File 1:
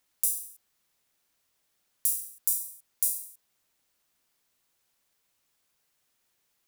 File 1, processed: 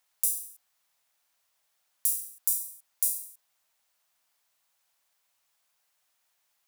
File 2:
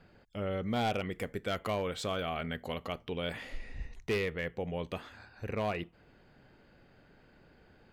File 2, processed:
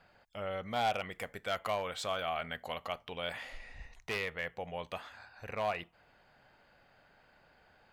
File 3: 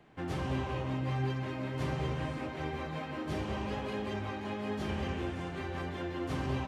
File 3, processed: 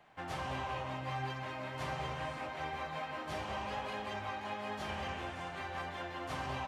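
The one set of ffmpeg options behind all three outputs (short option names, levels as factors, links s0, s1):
-af "lowshelf=f=510:t=q:w=1.5:g=-9"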